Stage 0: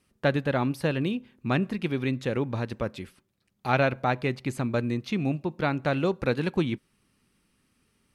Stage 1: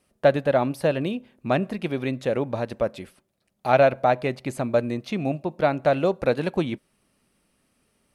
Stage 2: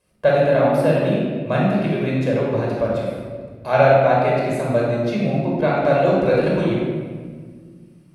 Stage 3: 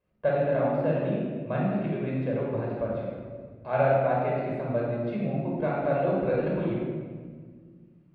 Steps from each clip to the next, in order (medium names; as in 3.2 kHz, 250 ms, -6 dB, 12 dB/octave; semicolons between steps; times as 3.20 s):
fifteen-band graphic EQ 100 Hz -4 dB, 630 Hz +11 dB, 10 kHz +4 dB
simulated room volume 2200 m³, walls mixed, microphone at 5.3 m; trim -4 dB
distance through air 410 m; trim -8 dB